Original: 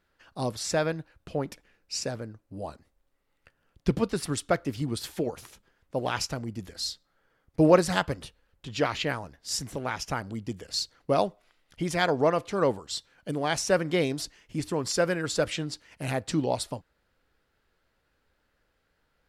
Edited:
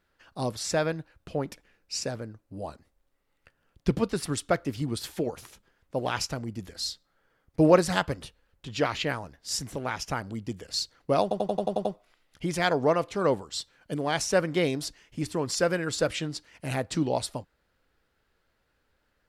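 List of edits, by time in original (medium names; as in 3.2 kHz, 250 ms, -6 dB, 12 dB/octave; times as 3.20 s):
11.22 s: stutter 0.09 s, 8 plays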